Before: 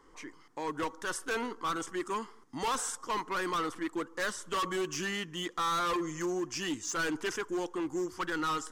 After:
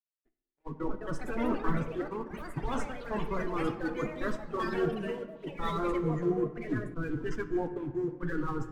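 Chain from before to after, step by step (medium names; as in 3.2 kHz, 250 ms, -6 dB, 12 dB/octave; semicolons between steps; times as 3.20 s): coarse spectral quantiser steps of 30 dB; RIAA curve playback; gate -30 dBFS, range -27 dB; high-pass 68 Hz 6 dB/octave; tilt EQ -2 dB/octave; in parallel at +2.5 dB: compressor with a negative ratio -33 dBFS, ratio -0.5; on the sum: flange 1.8 Hz, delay 6.9 ms, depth 1.8 ms, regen -26%; crossover distortion -55 dBFS; on a send at -8.5 dB: reverberation RT60 2.3 s, pre-delay 5 ms; on the sum: ever faster or slower copies 410 ms, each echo +5 st, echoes 3, each echo -6 dB; three bands expanded up and down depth 70%; trim -4 dB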